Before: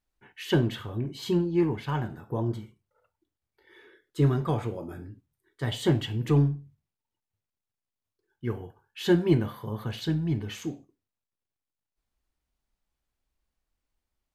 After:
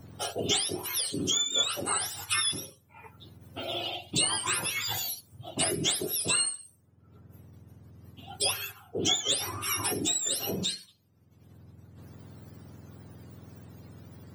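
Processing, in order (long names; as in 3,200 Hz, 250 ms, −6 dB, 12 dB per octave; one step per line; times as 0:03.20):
frequency axis turned over on the octave scale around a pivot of 1,100 Hz
multiband upward and downward compressor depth 100%
level +4 dB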